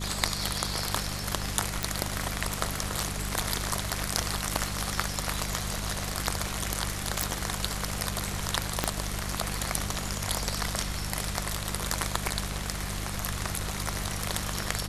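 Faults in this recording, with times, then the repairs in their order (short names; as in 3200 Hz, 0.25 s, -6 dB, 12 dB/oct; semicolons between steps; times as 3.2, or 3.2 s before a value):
hum 50 Hz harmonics 4 -36 dBFS
1.83 pop
7.23 pop
8.84 pop -8 dBFS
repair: de-click; de-hum 50 Hz, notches 4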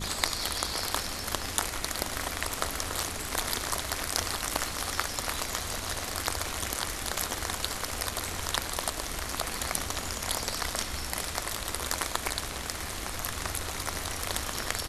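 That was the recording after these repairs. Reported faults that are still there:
8.84 pop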